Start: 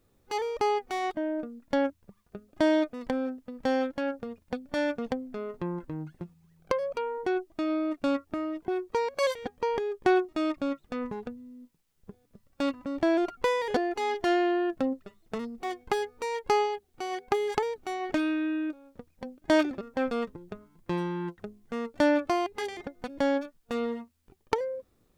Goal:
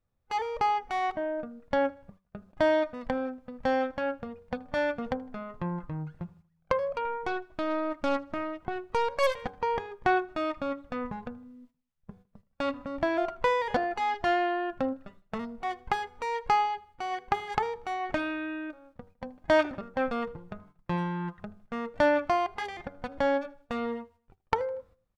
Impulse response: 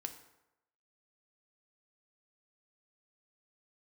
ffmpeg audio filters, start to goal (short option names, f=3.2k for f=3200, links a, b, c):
-filter_complex "[0:a]lowpass=f=1.4k:p=1,bandreject=f=94.51:t=h:w=4,bandreject=f=189.02:t=h:w=4,bandreject=f=283.53:t=h:w=4,bandreject=f=378.04:t=h:w=4,bandreject=f=472.55:t=h:w=4,bandreject=f=567.06:t=h:w=4,bandreject=f=661.57:t=h:w=4,bandreject=f=756.08:t=h:w=4,bandreject=f=850.59:t=h:w=4,bandreject=f=945.1:t=h:w=4,bandreject=f=1.03961k:t=h:w=4,bandreject=f=1.13412k:t=h:w=4,bandreject=f=1.22863k:t=h:w=4,bandreject=f=1.32314k:t=h:w=4,bandreject=f=1.41765k:t=h:w=4,bandreject=f=1.51216k:t=h:w=4,bandreject=f=1.60667k:t=h:w=4,agate=range=-15dB:threshold=-55dB:ratio=16:detection=peak,equalizer=f=330:t=o:w=1.1:g=-13,bandreject=f=420:w=12,asettb=1/sr,asplit=3[a][b][c];[a]atrim=end=7.054[d];[b]atrim=start=7.05:end=9.49,asetpts=PTS-STARTPTS,afade=t=in:d=0.004:c=qsin,afade=t=out:st=2.436:d=0.004:c=qsin,aeval=exprs='0.075*(cos(1*acos(clip(val(0)/0.075,-1,1)))-cos(1*PI/2))+0.00841*(cos(6*acos(clip(val(0)/0.075,-1,1)))-cos(6*PI/2))':c=same[e];[c]atrim=start=9.486[f];[d][e]acrossfade=d=0.004:c1=hsin:c2=qsin[g];[g][f]acrossfade=d=0.004:c1=qsin:c2=hsin,aecho=1:1:79|158|237:0.0631|0.0265|0.0111,volume=6.5dB"